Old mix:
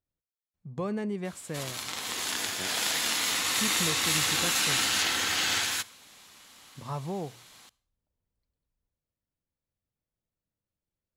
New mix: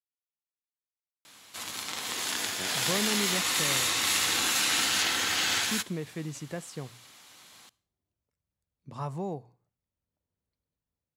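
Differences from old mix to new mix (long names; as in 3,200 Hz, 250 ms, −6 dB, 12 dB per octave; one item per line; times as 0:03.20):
speech: entry +2.10 s
master: add high-pass filter 78 Hz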